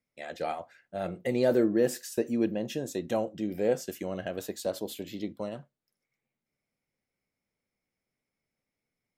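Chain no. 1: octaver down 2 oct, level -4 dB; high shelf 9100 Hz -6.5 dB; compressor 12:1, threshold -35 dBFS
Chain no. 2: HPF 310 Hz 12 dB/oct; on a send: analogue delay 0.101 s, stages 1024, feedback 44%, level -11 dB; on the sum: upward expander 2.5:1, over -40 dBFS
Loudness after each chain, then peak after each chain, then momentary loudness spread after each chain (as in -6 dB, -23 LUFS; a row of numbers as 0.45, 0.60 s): -41.5, -36.0 LUFS; -22.5, -16.5 dBFS; 4, 23 LU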